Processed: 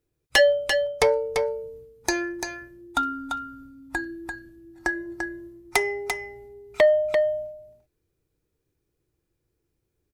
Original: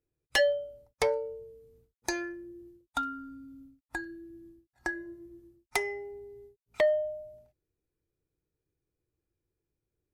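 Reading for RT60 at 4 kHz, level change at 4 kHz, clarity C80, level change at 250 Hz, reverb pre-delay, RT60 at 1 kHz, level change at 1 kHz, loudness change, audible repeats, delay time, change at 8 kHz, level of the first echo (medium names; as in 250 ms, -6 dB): no reverb, +8.5 dB, no reverb, +7.5 dB, no reverb, no reverb, +8.5 dB, +7.0 dB, 1, 342 ms, +8.5 dB, -6.0 dB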